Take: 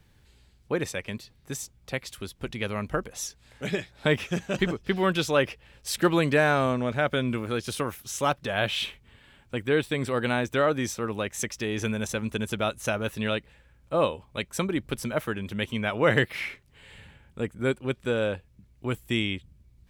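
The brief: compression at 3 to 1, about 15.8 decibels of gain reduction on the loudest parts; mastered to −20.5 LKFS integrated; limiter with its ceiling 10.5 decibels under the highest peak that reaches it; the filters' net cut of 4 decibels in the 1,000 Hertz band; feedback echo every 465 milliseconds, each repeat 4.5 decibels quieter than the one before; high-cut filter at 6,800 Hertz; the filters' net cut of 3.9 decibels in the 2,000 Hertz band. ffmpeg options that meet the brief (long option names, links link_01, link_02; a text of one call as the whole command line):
ffmpeg -i in.wav -af "lowpass=6800,equalizer=frequency=1000:width_type=o:gain=-4.5,equalizer=frequency=2000:width_type=o:gain=-3.5,acompressor=threshold=-41dB:ratio=3,alimiter=level_in=11.5dB:limit=-24dB:level=0:latency=1,volume=-11.5dB,aecho=1:1:465|930|1395|1860|2325|2790|3255|3720|4185:0.596|0.357|0.214|0.129|0.0772|0.0463|0.0278|0.0167|0.01,volume=24dB" out.wav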